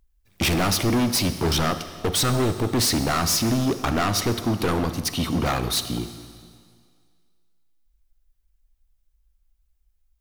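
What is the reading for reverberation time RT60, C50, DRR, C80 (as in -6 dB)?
2.0 s, 11.0 dB, 10.5 dB, 12.0 dB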